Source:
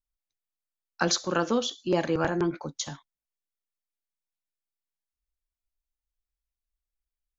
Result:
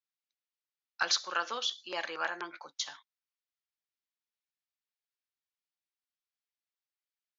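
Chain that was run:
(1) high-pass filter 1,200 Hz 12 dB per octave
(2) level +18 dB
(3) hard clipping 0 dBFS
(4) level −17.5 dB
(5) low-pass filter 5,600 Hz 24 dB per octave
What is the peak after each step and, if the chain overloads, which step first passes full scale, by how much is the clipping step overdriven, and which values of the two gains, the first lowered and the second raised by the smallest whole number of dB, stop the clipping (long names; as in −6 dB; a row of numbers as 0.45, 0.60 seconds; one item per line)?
−12.5, +5.5, 0.0, −17.5, −16.5 dBFS
step 2, 5.5 dB
step 2 +12 dB, step 4 −11.5 dB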